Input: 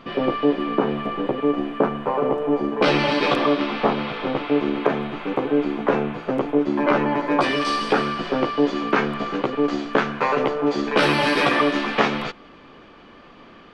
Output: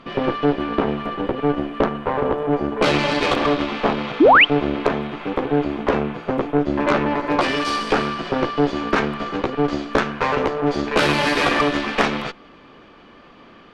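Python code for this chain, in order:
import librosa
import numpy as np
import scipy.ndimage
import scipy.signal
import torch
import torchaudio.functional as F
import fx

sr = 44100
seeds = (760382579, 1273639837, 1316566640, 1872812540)

y = fx.cheby_harmonics(x, sr, harmonics=(8,), levels_db=(-20,), full_scale_db=-2.5)
y = fx.spec_paint(y, sr, seeds[0], shape='rise', start_s=4.2, length_s=0.25, low_hz=260.0, high_hz=3300.0, level_db=-10.0)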